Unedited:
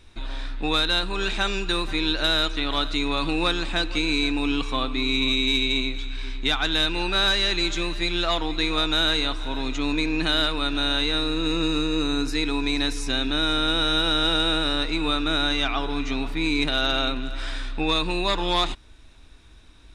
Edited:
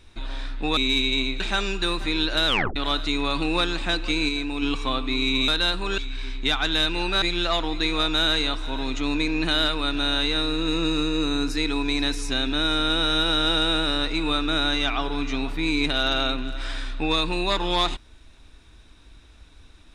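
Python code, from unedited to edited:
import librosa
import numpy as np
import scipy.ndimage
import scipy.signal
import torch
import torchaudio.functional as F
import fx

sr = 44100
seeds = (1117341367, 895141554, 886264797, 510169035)

y = fx.edit(x, sr, fx.swap(start_s=0.77, length_s=0.5, other_s=5.35, other_length_s=0.63),
    fx.tape_stop(start_s=2.34, length_s=0.29),
    fx.clip_gain(start_s=4.16, length_s=0.33, db=-4.0),
    fx.cut(start_s=7.22, length_s=0.78), tone=tone)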